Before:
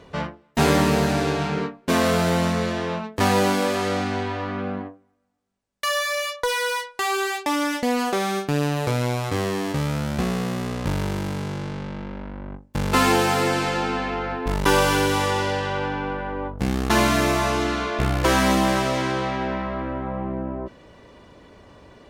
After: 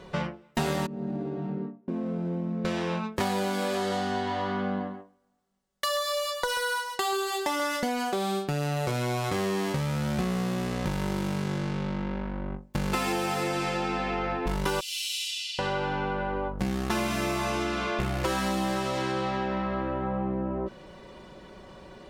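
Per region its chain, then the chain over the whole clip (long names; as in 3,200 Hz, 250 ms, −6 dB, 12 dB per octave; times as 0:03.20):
0:00.86–0:02.65: resonant band-pass 260 Hz, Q 2.1 + downward compressor 2 to 1, threshold −31 dBFS
0:03.78–0:07.89: notch filter 2,400 Hz, Q 7.3 + single-tap delay 135 ms −10 dB
0:14.80–0:15.59: Butterworth high-pass 2,600 Hz 48 dB per octave + high-shelf EQ 11,000 Hz −6.5 dB
whole clip: comb filter 5.4 ms, depth 57%; downward compressor 5 to 1, threshold −26 dBFS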